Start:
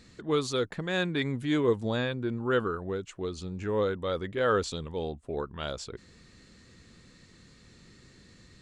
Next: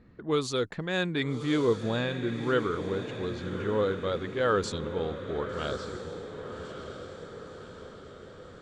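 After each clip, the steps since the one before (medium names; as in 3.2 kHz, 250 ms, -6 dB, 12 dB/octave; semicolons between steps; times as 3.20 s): level-controlled noise filter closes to 1.2 kHz, open at -25 dBFS; echo that smears into a reverb 1158 ms, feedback 55%, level -9 dB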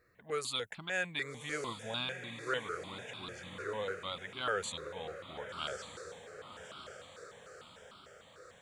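tilt EQ +3.5 dB/octave; stepped phaser 6.7 Hz 860–1800 Hz; trim -3.5 dB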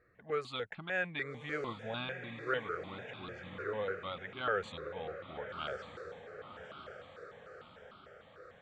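low-pass 2.3 kHz 12 dB/octave; band-stop 990 Hz, Q 10; trim +1.5 dB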